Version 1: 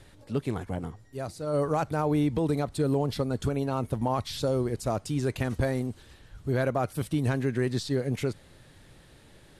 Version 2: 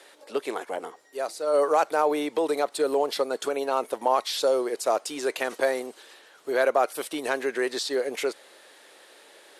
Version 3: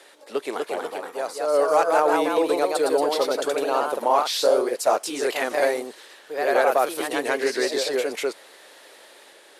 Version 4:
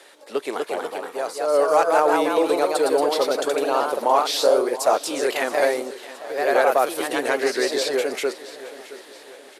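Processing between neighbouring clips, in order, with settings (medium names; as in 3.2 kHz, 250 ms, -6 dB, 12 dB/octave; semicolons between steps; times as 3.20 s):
high-pass 410 Hz 24 dB/octave; trim +7 dB
ever faster or slower copies 265 ms, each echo +1 st, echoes 2; trim +1.5 dB
feedback delay 671 ms, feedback 47%, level -16.5 dB; trim +1.5 dB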